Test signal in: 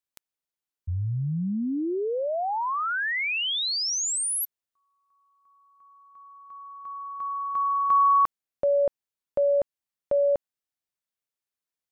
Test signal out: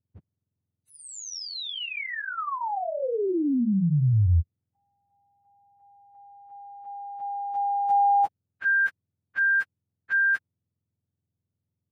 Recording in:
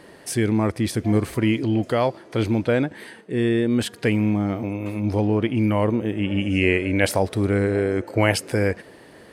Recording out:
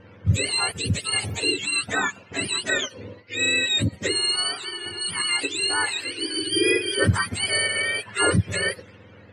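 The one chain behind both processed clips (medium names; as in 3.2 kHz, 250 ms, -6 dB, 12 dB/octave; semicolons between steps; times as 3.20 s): spectrum inverted on a logarithmic axis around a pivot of 950 Hz; level-controlled noise filter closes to 2.1 kHz, open at -23 dBFS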